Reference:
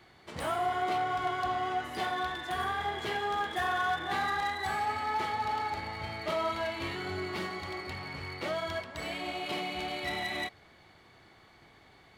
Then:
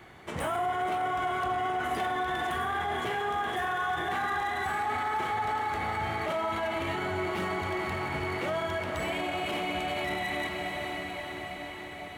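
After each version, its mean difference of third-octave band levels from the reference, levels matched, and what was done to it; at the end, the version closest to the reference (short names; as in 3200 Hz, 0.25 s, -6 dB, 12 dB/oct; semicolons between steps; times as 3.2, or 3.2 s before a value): 4.5 dB: diffused feedback echo 0.486 s, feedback 71%, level -9.5 dB; limiter -30.5 dBFS, peak gain reduction 10 dB; bell 4500 Hz -11 dB 0.58 oct; gain +8 dB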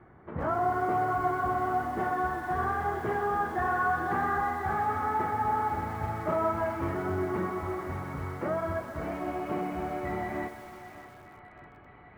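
6.0 dB: LPF 1400 Hz 24 dB/oct; bell 790 Hz -5.5 dB 1.7 oct; on a send: thinning echo 0.604 s, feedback 80%, high-pass 690 Hz, level -12 dB; on the sum: lo-fi delay 0.126 s, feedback 80%, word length 9-bit, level -14 dB; gain +8 dB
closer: first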